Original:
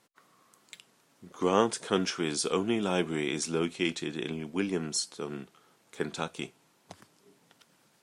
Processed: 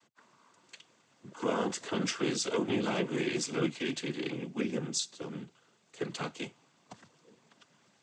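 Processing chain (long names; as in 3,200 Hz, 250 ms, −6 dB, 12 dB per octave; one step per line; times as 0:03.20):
0:04.43–0:06.13: parametric band 1,000 Hz −5 dB 3 octaves
brickwall limiter −19 dBFS, peak gain reduction 9.5 dB
cochlear-implant simulation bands 16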